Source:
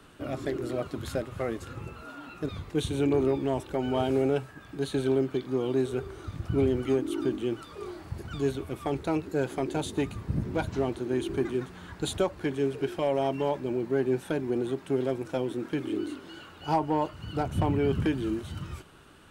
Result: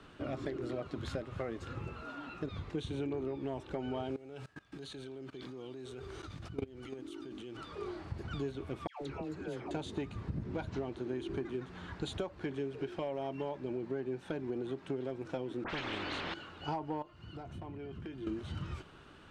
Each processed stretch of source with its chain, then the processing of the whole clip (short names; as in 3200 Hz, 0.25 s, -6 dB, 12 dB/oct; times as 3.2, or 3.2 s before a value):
4.16–7.57 high shelf 3000 Hz +11.5 dB + level quantiser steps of 22 dB
8.87–9.71 compressor 4:1, threshold -35 dBFS + dispersion lows, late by 0.147 s, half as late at 1100 Hz
15.64–16.34 tape spacing loss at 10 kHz 24 dB + dispersion highs, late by 63 ms, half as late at 2600 Hz + spectral compressor 4:1
17.02–18.27 compressor 5:1, threshold -31 dBFS + resonator 350 Hz, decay 0.18 s, mix 70%
whole clip: compressor, threshold -33 dBFS; LPF 5200 Hz 12 dB/oct; gain -1.5 dB